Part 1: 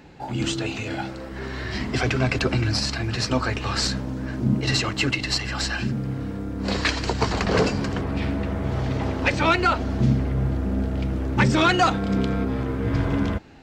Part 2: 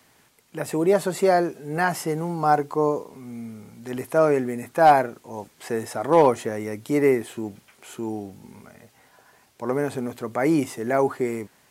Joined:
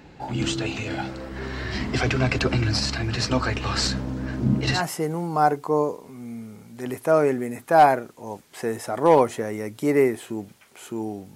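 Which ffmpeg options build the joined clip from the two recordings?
ffmpeg -i cue0.wav -i cue1.wav -filter_complex "[0:a]apad=whole_dur=11.35,atrim=end=11.35,atrim=end=4.83,asetpts=PTS-STARTPTS[link_01];[1:a]atrim=start=1.78:end=8.42,asetpts=PTS-STARTPTS[link_02];[link_01][link_02]acrossfade=duration=0.12:curve1=tri:curve2=tri" out.wav

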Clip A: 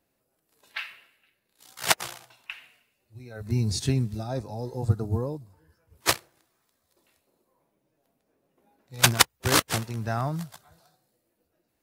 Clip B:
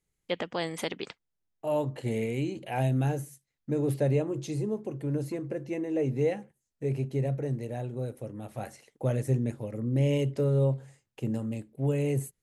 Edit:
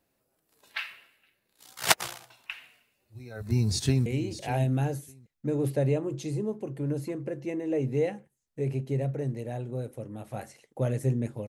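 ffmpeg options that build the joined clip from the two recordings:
ffmpeg -i cue0.wav -i cue1.wav -filter_complex "[0:a]apad=whole_dur=11.48,atrim=end=11.48,atrim=end=4.062[link_01];[1:a]atrim=start=2.298:end=9.72[link_02];[link_01][link_02]acrossfade=duration=0.004:curve1=hsin:curve2=hsin,asplit=2[link_03][link_04];[link_04]afade=type=in:start_time=3.46:duration=0.01,afade=type=out:start_time=4.06:duration=0.01,aecho=0:1:600|1200:0.237137|0.0355706[link_05];[link_03][link_05]amix=inputs=2:normalize=0" out.wav

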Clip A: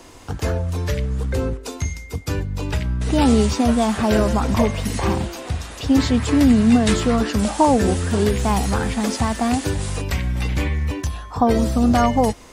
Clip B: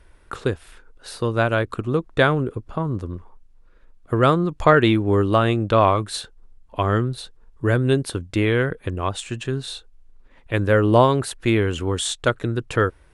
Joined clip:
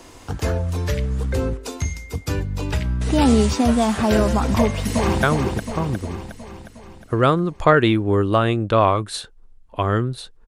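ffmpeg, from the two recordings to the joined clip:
ffmpeg -i cue0.wav -i cue1.wav -filter_complex "[0:a]apad=whole_dur=10.47,atrim=end=10.47,atrim=end=5.232[link_01];[1:a]atrim=start=2.228:end=7.47[link_02];[link_01][link_02]acrossfade=duration=0.004:curve1=hsin:curve2=hsin,asplit=2[link_03][link_04];[link_04]afade=type=in:start_time=4.59:duration=0.01,afade=type=out:start_time=5.23:duration=0.01,aecho=0:1:360|720|1080|1440|1800|2160|2520|2880:0.562341|0.337405|0.202443|0.121466|0.0728794|0.0437277|0.0262366|0.015742[link_05];[link_03][link_05]amix=inputs=2:normalize=0" out.wav

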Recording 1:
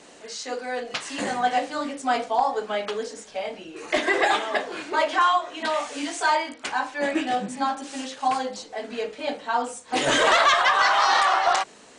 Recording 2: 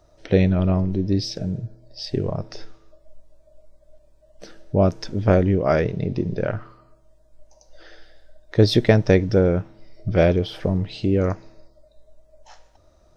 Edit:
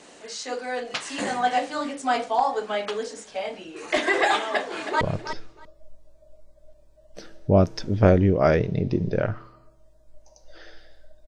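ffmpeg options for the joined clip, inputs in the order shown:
ffmpeg -i cue0.wav -i cue1.wav -filter_complex "[0:a]apad=whole_dur=11.27,atrim=end=11.27,atrim=end=5.012[link_01];[1:a]atrim=start=2.258:end=8.52[link_02];[link_01][link_02]acrossfade=duration=0.004:curve1=hsin:curve2=hsin,asplit=2[link_03][link_04];[link_04]afade=type=in:start_time=4.38:duration=0.01,afade=type=out:start_time=5.01:duration=0.01,aecho=0:1:320|640:0.316228|0.0474342[link_05];[link_03][link_05]amix=inputs=2:normalize=0" out.wav

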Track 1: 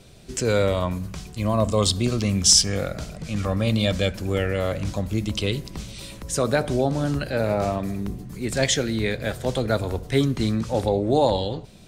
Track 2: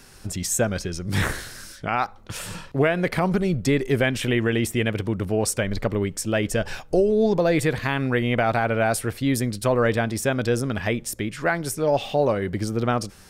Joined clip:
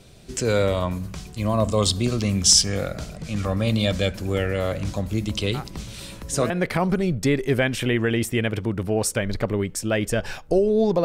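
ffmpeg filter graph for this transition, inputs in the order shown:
ffmpeg -i cue0.wav -i cue1.wav -filter_complex "[1:a]asplit=2[link_01][link_02];[0:a]apad=whole_dur=11.04,atrim=end=11.04,atrim=end=6.502[link_03];[link_02]atrim=start=2.918:end=7.46[link_04];[link_01]atrim=start=1.96:end=2.92,asetpts=PTS-STARTPTS,volume=-13dB,afade=type=in:duration=0.004:curve=hsin,afade=type=out:start_time=0.956:duration=0.004:curve=hsin,adelay=5540[link_05];[link_03][link_04]acrossfade=duration=0.004:curve1=hsin:curve2=hsin[link_06];[link_06][link_05]amix=inputs=2:normalize=0" out.wav

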